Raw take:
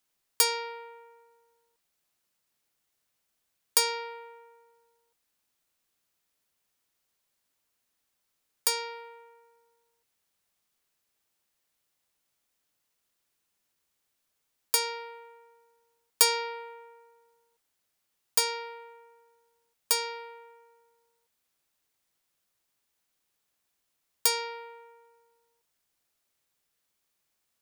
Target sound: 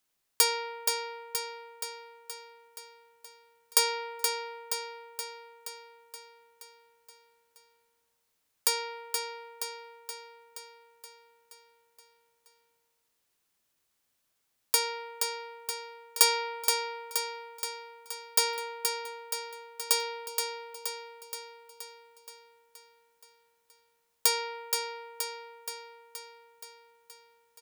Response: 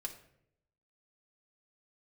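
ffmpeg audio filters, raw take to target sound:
-af "aecho=1:1:474|948|1422|1896|2370|2844|3318|3792:0.531|0.319|0.191|0.115|0.0688|0.0413|0.0248|0.0149"

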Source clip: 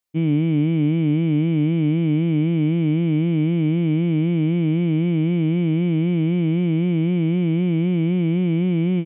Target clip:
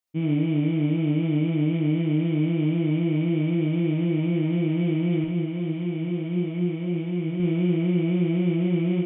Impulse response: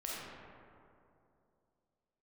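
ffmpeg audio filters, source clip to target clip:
-filter_complex "[0:a]asettb=1/sr,asplit=3[s0][s1][s2];[s0]atrim=end=5.244[s3];[s1]atrim=start=5.24:end=7.4,asetpts=PTS-STARTPTS,afade=t=in:d=0.004:c=qsin,afade=t=out:st=2.156:d=0.004:c=qsin,flanger=delay=4.5:depth=3.2:regen=71:speed=1.6:shape=sinusoidal[s4];[s2]atrim=start=7.396[s5];[s3][s4]acrossfade=d=0.004:c1=hsin:c2=qsin[s6];[s6][s5]acrossfade=d=0.004:c1=qsin:c2=hsin[s7];[1:a]atrim=start_sample=2205,afade=t=out:st=0.13:d=0.01,atrim=end_sample=6174[s8];[s7][s8]afir=irnorm=-1:irlink=0"

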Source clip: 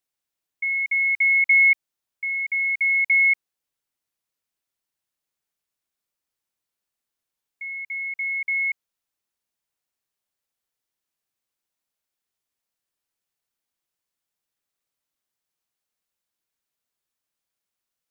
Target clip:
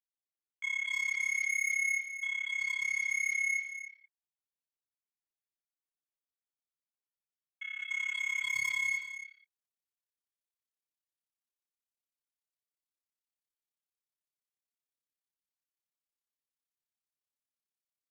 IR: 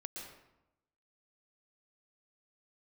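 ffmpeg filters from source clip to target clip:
-filter_complex "[0:a]afwtdn=0.0251,asetnsamples=n=441:p=0,asendcmd='7.81 highshelf g 6',highshelf=f=2200:g=-3[s0];[1:a]atrim=start_sample=2205,afade=t=out:st=0.39:d=0.01,atrim=end_sample=17640,asetrate=33075,aresample=44100[s1];[s0][s1]afir=irnorm=-1:irlink=0,asoftclip=type=tanh:threshold=0.0398,tremolo=f=34:d=0.919,aecho=1:1:281:0.266,volume=1.26"

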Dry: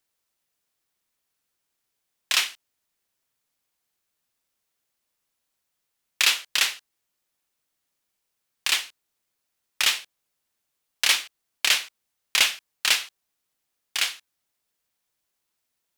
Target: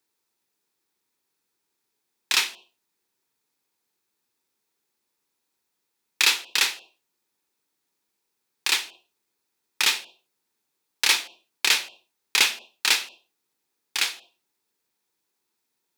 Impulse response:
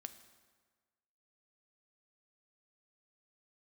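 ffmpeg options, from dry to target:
-filter_complex "[0:a]highpass=f=210:p=1,equalizer=f=400:t=o:w=1.2:g=8,asplit=2[s0][s1];[s1]asuperstop=centerf=1600:order=20:qfactor=1.1[s2];[1:a]atrim=start_sample=2205,afade=t=out:st=0.28:d=0.01,atrim=end_sample=12789,lowpass=2600[s3];[s2][s3]afir=irnorm=-1:irlink=0,volume=1.19[s4];[s0][s4]amix=inputs=2:normalize=0"

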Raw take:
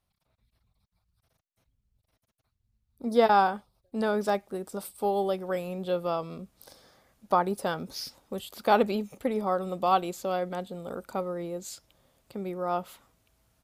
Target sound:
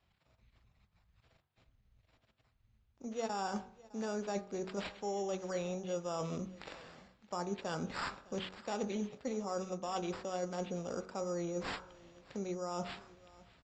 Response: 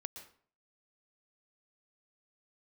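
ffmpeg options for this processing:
-filter_complex "[0:a]acrossover=split=420|3000[s0][s1][s2];[s1]acompressor=threshold=0.0355:ratio=2[s3];[s0][s3][s2]amix=inputs=3:normalize=0,acrusher=samples=7:mix=1:aa=0.000001,areverse,acompressor=threshold=0.0112:ratio=6,areverse,bandreject=f=46.89:t=h:w=4,bandreject=f=93.78:t=h:w=4,bandreject=f=140.67:t=h:w=4,bandreject=f=187.56:t=h:w=4,bandreject=f=234.45:t=h:w=4,bandreject=f=281.34:t=h:w=4,bandreject=f=328.23:t=h:w=4,bandreject=f=375.12:t=h:w=4,bandreject=f=422.01:t=h:w=4,bandreject=f=468.9:t=h:w=4,bandreject=f=515.79:t=h:w=4,bandreject=f=562.68:t=h:w=4,bandreject=f=609.57:t=h:w=4,bandreject=f=656.46:t=h:w=4,bandreject=f=703.35:t=h:w=4,bandreject=f=750.24:t=h:w=4,bandreject=f=797.13:t=h:w=4,bandreject=f=844.02:t=h:w=4,bandreject=f=890.91:t=h:w=4,bandreject=f=937.8:t=h:w=4,bandreject=f=984.69:t=h:w=4,bandreject=f=1031.58:t=h:w=4,bandreject=f=1078.47:t=h:w=4,bandreject=f=1125.36:t=h:w=4,bandreject=f=1172.25:t=h:w=4,bandreject=f=1219.14:t=h:w=4,bandreject=f=1266.03:t=h:w=4,bandreject=f=1312.92:t=h:w=4,bandreject=f=1359.81:t=h:w=4,bandreject=f=1406.7:t=h:w=4,bandreject=f=1453.59:t=h:w=4,bandreject=f=1500.48:t=h:w=4,bandreject=f=1547.37:t=h:w=4,bandreject=f=1594.26:t=h:w=4,bandreject=f=1641.15:t=h:w=4,bandreject=f=1688.04:t=h:w=4,asplit=2[s4][s5];[s5]aecho=0:1:609:0.0794[s6];[s4][s6]amix=inputs=2:normalize=0,volume=1.58" -ar 16000 -c:a libvorbis -b:a 64k

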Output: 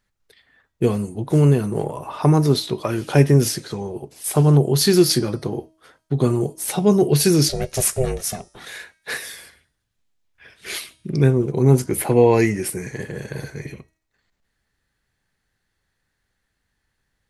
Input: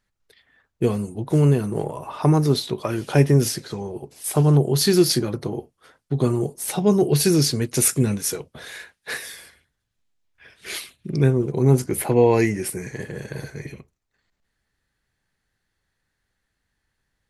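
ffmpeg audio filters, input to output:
-filter_complex "[0:a]bandreject=f=318.3:t=h:w=4,bandreject=f=636.6:t=h:w=4,bandreject=f=954.9:t=h:w=4,bandreject=f=1273.2:t=h:w=4,bandreject=f=1591.5:t=h:w=4,bandreject=f=1909.8:t=h:w=4,bandreject=f=2228.1:t=h:w=4,bandreject=f=2546.4:t=h:w=4,bandreject=f=2864.7:t=h:w=4,bandreject=f=3183:t=h:w=4,bandreject=f=3501.3:t=h:w=4,bandreject=f=3819.6:t=h:w=4,bandreject=f=4137.9:t=h:w=4,bandreject=f=4456.2:t=h:w=4,bandreject=f=4774.5:t=h:w=4,bandreject=f=5092.8:t=h:w=4,bandreject=f=5411.1:t=h:w=4,bandreject=f=5729.4:t=h:w=4,bandreject=f=6047.7:t=h:w=4,bandreject=f=6366:t=h:w=4,bandreject=f=6684.3:t=h:w=4,bandreject=f=7002.6:t=h:w=4,bandreject=f=7320.9:t=h:w=4,bandreject=f=7639.2:t=h:w=4,bandreject=f=7957.5:t=h:w=4,bandreject=f=8275.8:t=h:w=4,bandreject=f=8594.1:t=h:w=4,bandreject=f=8912.4:t=h:w=4,bandreject=f=9230.7:t=h:w=4,bandreject=f=9549:t=h:w=4,bandreject=f=9867.3:t=h:w=4,bandreject=f=10185.6:t=h:w=4,asplit=3[s0][s1][s2];[s0]afade=t=out:st=7.48:d=0.02[s3];[s1]aeval=exprs='val(0)*sin(2*PI*260*n/s)':c=same,afade=t=in:st=7.48:d=0.02,afade=t=out:st=8.65:d=0.02[s4];[s2]afade=t=in:st=8.65:d=0.02[s5];[s3][s4][s5]amix=inputs=3:normalize=0,volume=1.26"

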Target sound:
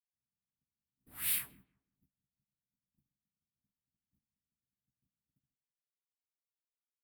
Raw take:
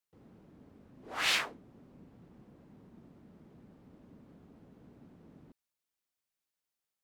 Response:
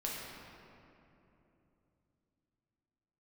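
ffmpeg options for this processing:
-filter_complex "[0:a]agate=range=0.0126:threshold=0.00282:ratio=16:detection=peak,firequalizer=gain_entry='entry(120,0);entry(470,-25);entry(1900,-13)':delay=0.05:min_phase=1,aexciter=amount=15.2:drive=9.6:freq=9600,asplit=2[s0][s1];[s1]adelay=15,volume=0.501[s2];[s0][s2]amix=inputs=2:normalize=0,asplit=2[s3][s4];[s4]adelay=168,lowpass=f=1100:p=1,volume=0.1,asplit=2[s5][s6];[s6]adelay=168,lowpass=f=1100:p=1,volume=0.36,asplit=2[s7][s8];[s8]adelay=168,lowpass=f=1100:p=1,volume=0.36[s9];[s3][s5][s7][s9]amix=inputs=4:normalize=0,volume=0.841"

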